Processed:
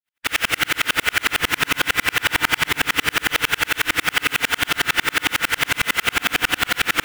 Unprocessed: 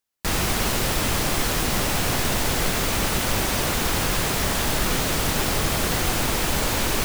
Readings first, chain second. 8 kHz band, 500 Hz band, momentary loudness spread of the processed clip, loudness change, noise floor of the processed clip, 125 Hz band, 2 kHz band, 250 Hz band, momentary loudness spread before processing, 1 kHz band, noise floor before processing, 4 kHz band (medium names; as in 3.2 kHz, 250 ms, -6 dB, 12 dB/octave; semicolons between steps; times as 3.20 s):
-2.5 dB, -5.0 dB, 1 LU, +3.0 dB, -46 dBFS, -9.5 dB, +9.5 dB, -5.0 dB, 0 LU, +2.0 dB, -24 dBFS, +4.5 dB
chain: spectral peaks clipped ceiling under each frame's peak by 20 dB; high-order bell 2.1 kHz +12.5 dB; FDN reverb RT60 2.4 s, low-frequency decay 1.1×, high-frequency decay 0.35×, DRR -5.5 dB; in parallel at -1 dB: peak limiter -7 dBFS, peak gain reduction 10 dB; on the sum: sawtooth tremolo in dB swelling 11 Hz, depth 40 dB; trim -4.5 dB